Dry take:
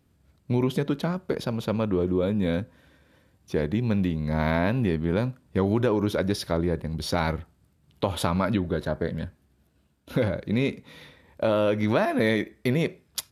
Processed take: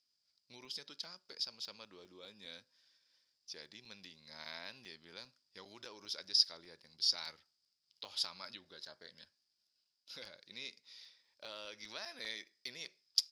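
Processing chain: band-pass 5000 Hz, Q 11; crackling interface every 0.20 s, samples 128, zero; gain +10.5 dB

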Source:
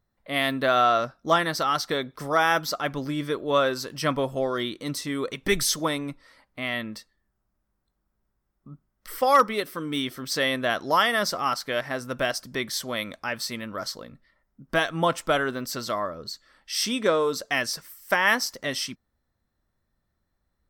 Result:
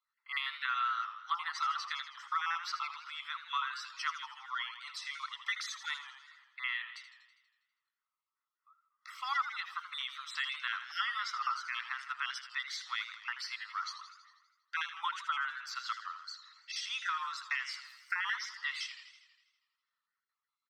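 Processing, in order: random spectral dropouts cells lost 27%; steep high-pass 940 Hz 96 dB/oct; comb 1.5 ms, depth 45%; compressor, threshold -28 dBFS, peak gain reduction 14.5 dB; air absorption 150 m; warbling echo 81 ms, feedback 64%, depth 128 cents, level -11 dB; gain -2 dB

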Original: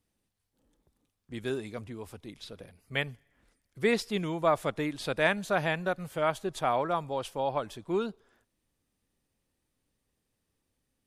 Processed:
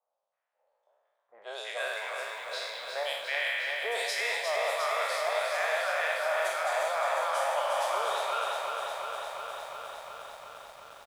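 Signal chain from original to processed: spectral trails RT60 1.49 s; elliptic high-pass 590 Hz, stop band 50 dB; three bands offset in time lows, highs, mids 0.1/0.32 s, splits 1100/3400 Hz; reverse; compressor 16:1, threshold -36 dBFS, peak gain reduction 15.5 dB; reverse; low-pass opened by the level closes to 1300 Hz, open at -38.5 dBFS; lo-fi delay 0.356 s, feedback 80%, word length 11-bit, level -5 dB; gain +8 dB

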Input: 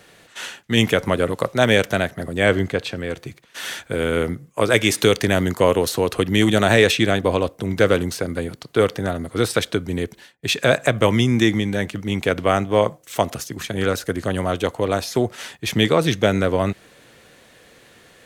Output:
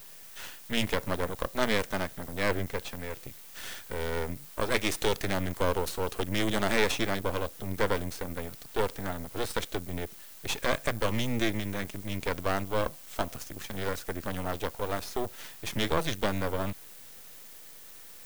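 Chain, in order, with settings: added noise violet -38 dBFS; half-wave rectifier; gain -7 dB

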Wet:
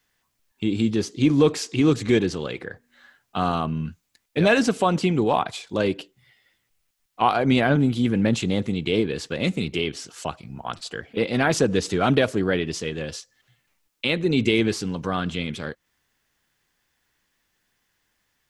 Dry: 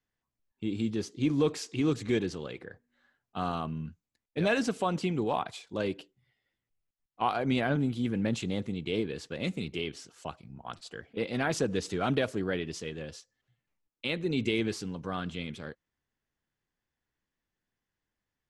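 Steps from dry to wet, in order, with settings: mismatched tape noise reduction encoder only; gain +9 dB

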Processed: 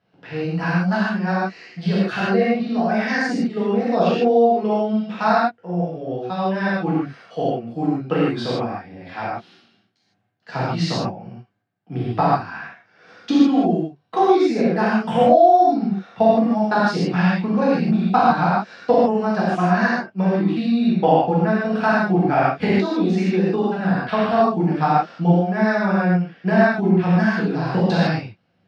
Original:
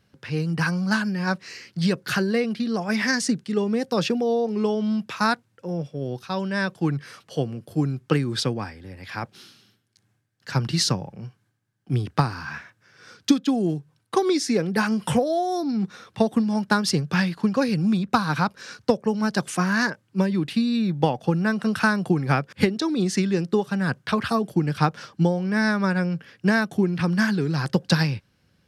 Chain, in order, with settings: transient shaper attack +2 dB, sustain -3 dB; BPF 140–3200 Hz; bell 710 Hz +11 dB 0.41 oct; reverb, pre-delay 3 ms, DRR -9 dB; gain -7 dB

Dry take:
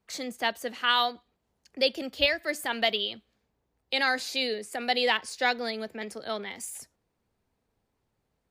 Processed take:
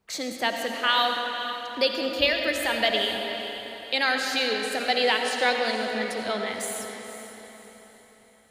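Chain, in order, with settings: notches 60/120/180/240 Hz; in parallel at -3 dB: compressor, threshold -34 dBFS, peak gain reduction 15 dB; on the sum: diffused feedback echo 0.484 s, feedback 43%, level -11 dB; digital reverb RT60 3.2 s, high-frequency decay 0.6×, pre-delay 40 ms, DRR 3 dB

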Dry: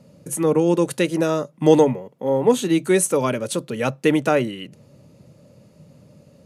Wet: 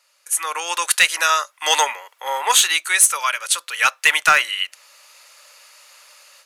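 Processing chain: HPF 1200 Hz 24 dB/oct; AGC gain up to 14.5 dB; hard clip -9.5 dBFS, distortion -17 dB; gain +4.5 dB

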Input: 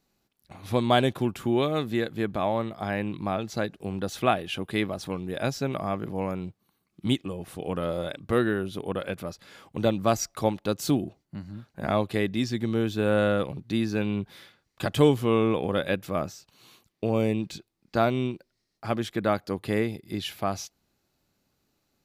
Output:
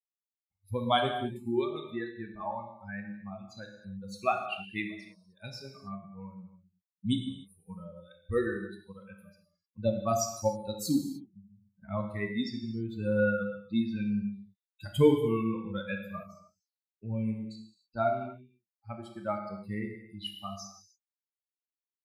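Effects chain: per-bin expansion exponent 3; 4.96–5.39 compressor 10:1, threshold -59 dBFS, peak gain reduction 15 dB; non-linear reverb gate 0.33 s falling, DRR 2.5 dB

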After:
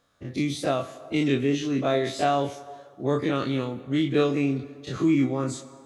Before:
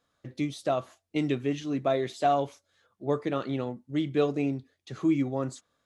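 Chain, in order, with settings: spectral dilation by 60 ms; 3.35–3.81 high shelf 5600 Hz +5.5 dB; plate-style reverb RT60 1.6 s, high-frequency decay 0.8×, DRR 13 dB; dynamic EQ 750 Hz, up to -6 dB, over -38 dBFS, Q 0.95; gain +3 dB

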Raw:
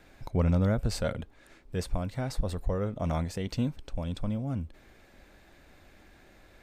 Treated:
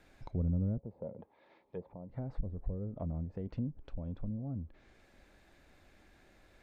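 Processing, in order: treble ducked by the level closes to 330 Hz, closed at -26.5 dBFS; 0.78–2.1 speaker cabinet 210–3700 Hz, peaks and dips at 270 Hz -6 dB, 530 Hz +5 dB, 900 Hz +10 dB, 1500 Hz -10 dB, 2800 Hz -6 dB; gain -6.5 dB

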